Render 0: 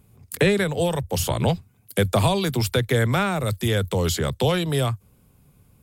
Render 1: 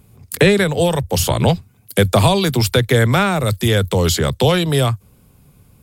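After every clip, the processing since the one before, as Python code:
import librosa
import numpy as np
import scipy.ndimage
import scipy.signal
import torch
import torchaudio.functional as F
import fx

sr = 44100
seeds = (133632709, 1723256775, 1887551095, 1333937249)

y = fx.peak_eq(x, sr, hz=4600.0, db=2.0, octaves=0.77)
y = y * 10.0 ** (6.5 / 20.0)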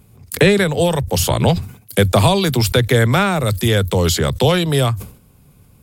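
y = fx.sustainer(x, sr, db_per_s=120.0)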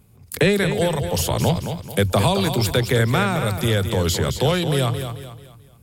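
y = fx.echo_feedback(x, sr, ms=219, feedback_pct=38, wet_db=-8.5)
y = y * 10.0 ** (-5.0 / 20.0)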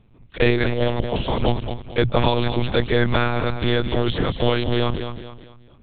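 y = fx.lpc_monotone(x, sr, seeds[0], pitch_hz=120.0, order=10)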